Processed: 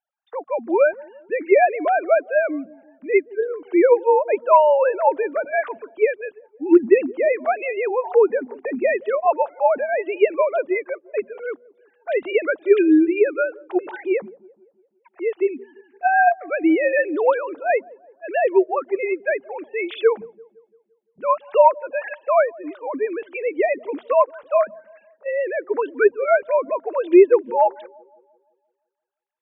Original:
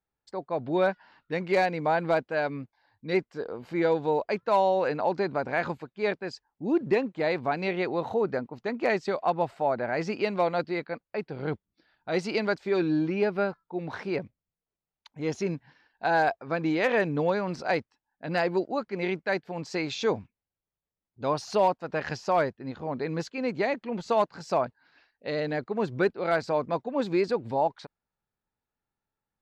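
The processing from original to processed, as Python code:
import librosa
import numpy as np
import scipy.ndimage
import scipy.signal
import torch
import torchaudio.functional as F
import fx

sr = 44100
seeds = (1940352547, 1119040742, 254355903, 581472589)

y = fx.sine_speech(x, sr)
y = fx.hum_notches(y, sr, base_hz=60, count=4)
y = fx.echo_wet_lowpass(y, sr, ms=171, feedback_pct=48, hz=630.0, wet_db=-21.0)
y = y * librosa.db_to_amplitude(8.5)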